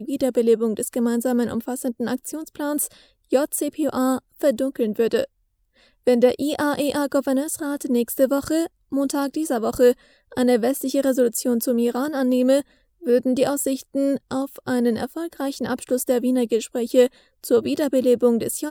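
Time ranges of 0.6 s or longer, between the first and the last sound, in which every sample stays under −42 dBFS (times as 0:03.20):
0:05.26–0:06.07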